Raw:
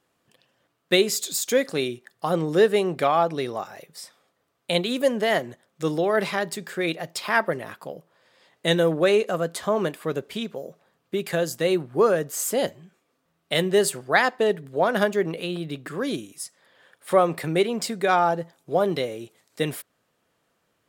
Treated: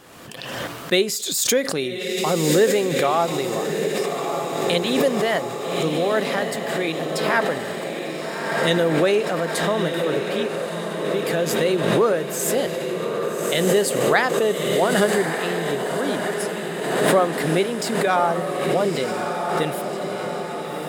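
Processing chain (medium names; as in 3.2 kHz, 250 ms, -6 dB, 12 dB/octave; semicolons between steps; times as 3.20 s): on a send: echo that smears into a reverb 1214 ms, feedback 64%, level -5 dB; on the sum: swell ahead of each attack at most 36 dB/s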